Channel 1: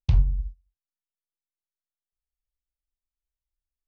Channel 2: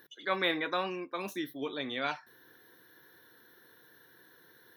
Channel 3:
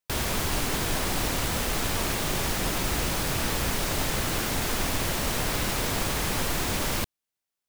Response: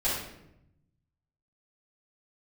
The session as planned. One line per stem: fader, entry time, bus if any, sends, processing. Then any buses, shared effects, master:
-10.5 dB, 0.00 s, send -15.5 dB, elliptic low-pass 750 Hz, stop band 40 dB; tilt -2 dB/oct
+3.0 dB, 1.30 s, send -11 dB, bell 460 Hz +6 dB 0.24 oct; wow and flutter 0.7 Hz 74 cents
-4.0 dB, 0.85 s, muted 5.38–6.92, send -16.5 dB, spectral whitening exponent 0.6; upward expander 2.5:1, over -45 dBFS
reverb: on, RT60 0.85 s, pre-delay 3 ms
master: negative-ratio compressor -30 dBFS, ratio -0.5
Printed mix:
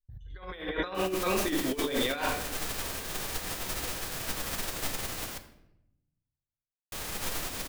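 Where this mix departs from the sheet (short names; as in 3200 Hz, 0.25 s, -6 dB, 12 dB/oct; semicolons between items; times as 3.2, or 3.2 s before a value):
stem 2: entry 1.30 s -> 0.10 s; stem 3 -4.0 dB -> -10.5 dB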